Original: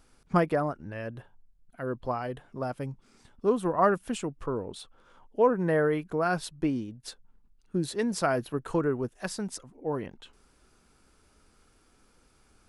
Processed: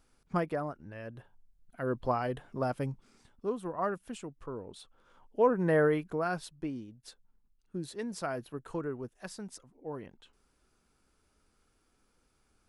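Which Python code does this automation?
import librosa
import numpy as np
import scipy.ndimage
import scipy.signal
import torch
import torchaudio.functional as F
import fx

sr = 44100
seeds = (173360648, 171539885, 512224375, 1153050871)

y = fx.gain(x, sr, db=fx.line((1.01, -7.0), (1.97, 1.0), (2.87, 1.0), (3.55, -9.5), (4.44, -9.5), (5.84, 0.0), (6.58, -9.0)))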